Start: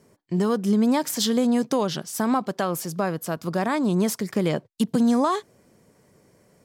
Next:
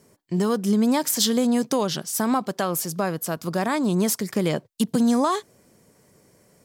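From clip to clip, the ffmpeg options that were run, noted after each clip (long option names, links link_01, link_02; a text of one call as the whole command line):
ffmpeg -i in.wav -af "highshelf=frequency=4800:gain=7" out.wav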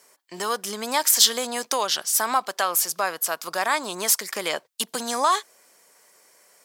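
ffmpeg -i in.wav -af "highpass=890,volume=6dB" out.wav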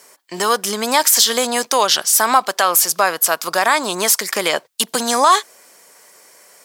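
ffmpeg -i in.wav -af "alimiter=level_in=10.5dB:limit=-1dB:release=50:level=0:latency=1,volume=-1dB" out.wav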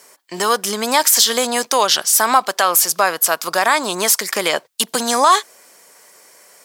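ffmpeg -i in.wav -af anull out.wav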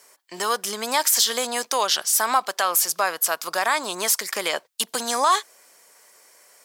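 ffmpeg -i in.wav -af "lowshelf=frequency=270:gain=-8.5,volume=-6dB" out.wav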